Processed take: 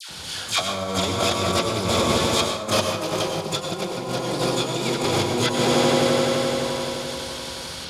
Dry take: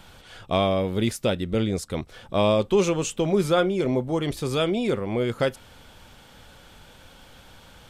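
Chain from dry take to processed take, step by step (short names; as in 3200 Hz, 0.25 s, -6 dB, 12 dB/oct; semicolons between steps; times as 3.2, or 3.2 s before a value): CVSD 32 kbps; HPF 61 Hz 24 dB/oct; dynamic EQ 230 Hz, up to -4 dB, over -35 dBFS, Q 1.5; swelling echo 86 ms, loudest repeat 5, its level -12 dB; in parallel at -6.5 dB: hard clip -20 dBFS, distortion -12 dB; on the sum: dispersion lows, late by 0.105 s, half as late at 1100 Hz; negative-ratio compressor -25 dBFS, ratio -0.5; bell 4700 Hz +12 dB 1.1 oct; harmoniser +12 st -6 dB; plate-style reverb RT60 0.64 s, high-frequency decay 0.65×, pre-delay 85 ms, DRR 4 dB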